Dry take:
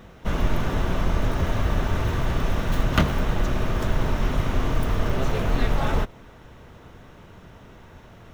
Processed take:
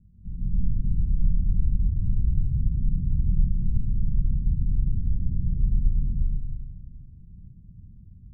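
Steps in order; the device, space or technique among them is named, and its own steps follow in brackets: club heard from the street (peak limiter -16.5 dBFS, peak gain reduction 11.5 dB; low-pass 170 Hz 24 dB/octave; reverberation RT60 1.6 s, pre-delay 117 ms, DRR -6.5 dB); trim -6 dB

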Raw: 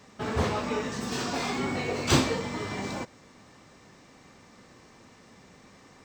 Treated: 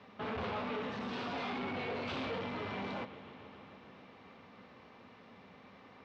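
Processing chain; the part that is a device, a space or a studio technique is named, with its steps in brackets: analogue delay pedal into a guitar amplifier (bucket-brigade echo 143 ms, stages 4096, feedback 83%, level -21 dB; valve stage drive 35 dB, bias 0.45; cabinet simulation 100–3500 Hz, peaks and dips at 140 Hz -9 dB, 330 Hz -7 dB, 1.8 kHz -4 dB); trim +1 dB

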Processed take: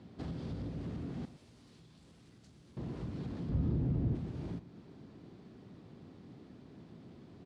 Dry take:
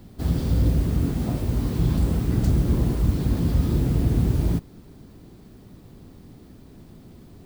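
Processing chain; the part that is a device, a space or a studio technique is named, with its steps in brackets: AM radio (band-pass 120–4300 Hz; compression, threshold -31 dBFS, peak gain reduction 11 dB; saturation -26 dBFS, distortion -21 dB); 1.25–2.77 s: pre-emphasis filter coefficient 0.9; low-pass 11 kHz 24 dB/octave; 3.49–4.15 s: tilt EQ -3 dB/octave; delay 119 ms -15 dB; trim -5.5 dB

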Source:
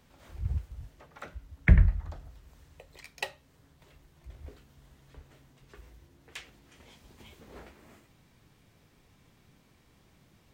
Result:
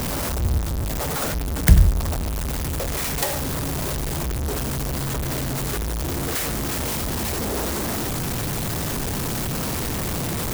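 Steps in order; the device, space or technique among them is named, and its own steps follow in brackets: early CD player with a faulty converter (jump at every zero crossing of -24.5 dBFS; sampling jitter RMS 0.11 ms); trim +5 dB

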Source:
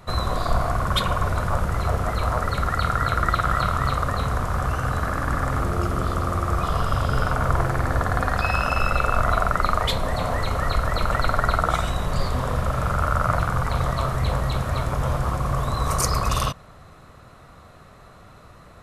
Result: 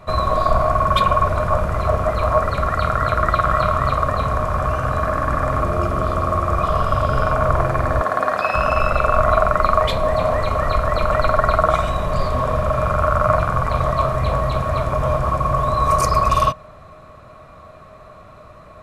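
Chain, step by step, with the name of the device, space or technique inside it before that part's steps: inside a helmet (treble shelf 4.4 kHz -7.5 dB; small resonant body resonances 620/1100/2400 Hz, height 14 dB, ringing for 70 ms); 8.02–8.55 s: high-pass 260 Hz 12 dB/octave; trim +2 dB

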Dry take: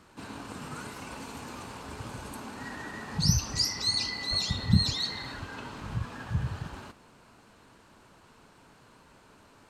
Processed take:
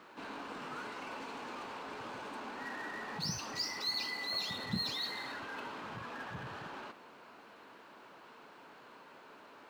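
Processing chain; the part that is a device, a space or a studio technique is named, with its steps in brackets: phone line with mismatched companding (band-pass 330–3500 Hz; companding laws mixed up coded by mu); trim -4 dB

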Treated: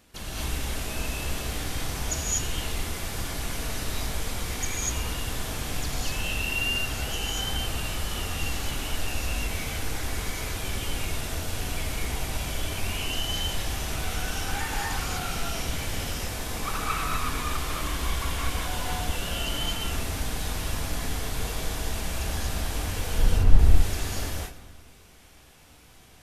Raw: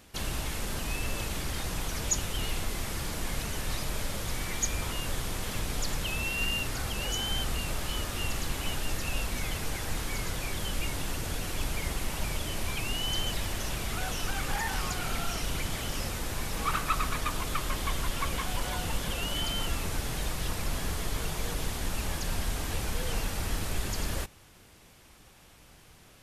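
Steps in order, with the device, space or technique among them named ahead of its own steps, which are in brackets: saturated reverb return (on a send at -11 dB: reverberation RT60 1.4 s, pre-delay 62 ms + saturation -21.5 dBFS, distortion -21 dB); 23.18–23.59 s: on the sum: tilt EQ -3.5 dB/octave; gated-style reverb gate 270 ms rising, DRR -4.5 dB; trim -4 dB

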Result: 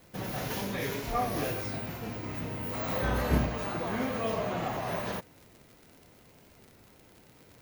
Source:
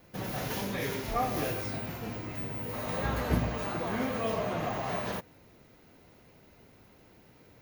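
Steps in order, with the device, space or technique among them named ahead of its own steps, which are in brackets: 2.20–3.46 s: doubling 30 ms -3 dB; warped LP (warped record 33 1/3 rpm, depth 100 cents; crackle 87 per s -43 dBFS; white noise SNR 35 dB)

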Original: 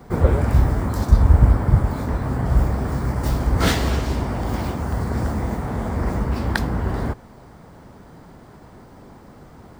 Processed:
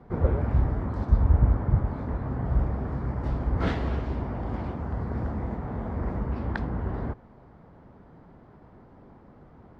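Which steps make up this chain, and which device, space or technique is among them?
phone in a pocket (low-pass 3.4 kHz 12 dB/octave; treble shelf 2.2 kHz -9.5 dB); trim -7 dB

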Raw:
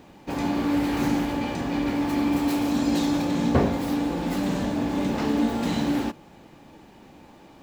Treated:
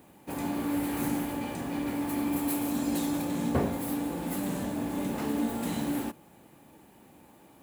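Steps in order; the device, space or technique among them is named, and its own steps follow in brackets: budget condenser microphone (high-pass 62 Hz; resonant high shelf 7.5 kHz +12 dB, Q 1.5); trim -6.5 dB

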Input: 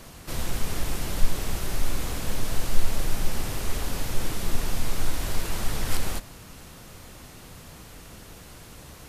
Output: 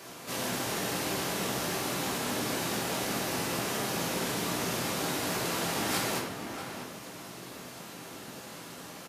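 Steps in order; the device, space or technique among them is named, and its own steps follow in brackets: high-pass 230 Hz 24 dB/octave; octave pedal (harmony voices -12 st -4 dB); echo from a far wall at 110 m, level -7 dB; simulated room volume 190 m³, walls mixed, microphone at 1.2 m; trim -2 dB

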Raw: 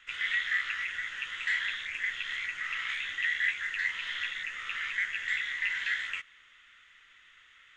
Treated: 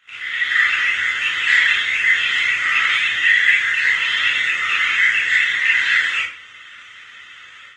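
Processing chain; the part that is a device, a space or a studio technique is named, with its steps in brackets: far-field microphone of a smart speaker (reverberation RT60 0.40 s, pre-delay 25 ms, DRR -5.5 dB; high-pass 88 Hz 12 dB/octave; level rider gain up to 12 dB; Opus 20 kbps 48 kHz)

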